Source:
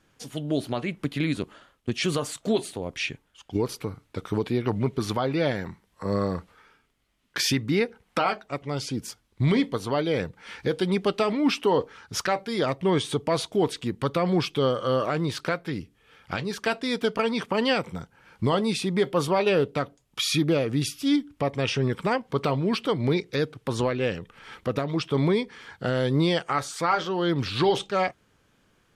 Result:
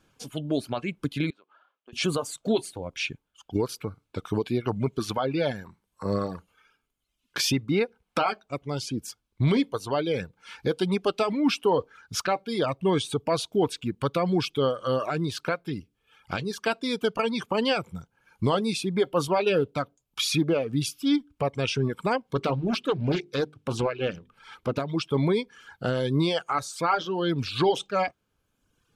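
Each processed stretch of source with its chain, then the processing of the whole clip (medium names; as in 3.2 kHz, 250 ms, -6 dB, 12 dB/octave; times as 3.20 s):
1.30–1.93 s: band-pass 530–3000 Hz + compression 2:1, threshold -54 dBFS
22.35–24.80 s: treble shelf 12 kHz -5.5 dB + hum notches 50/100/150/200/250/300/350/400 Hz + loudspeaker Doppler distortion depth 0.45 ms
whole clip: band-stop 1.9 kHz, Q 5.8; reverb removal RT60 1.2 s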